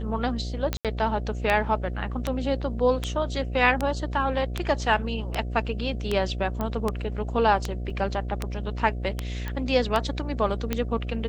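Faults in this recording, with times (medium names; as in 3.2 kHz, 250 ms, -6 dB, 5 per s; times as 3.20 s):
buzz 60 Hz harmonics 12 -31 dBFS
tick 78 rpm -11 dBFS
0.77–0.85 s: dropout 77 ms
6.61 s: pop -16 dBFS
7.90 s: dropout 3.9 ms
9.48 s: pop -18 dBFS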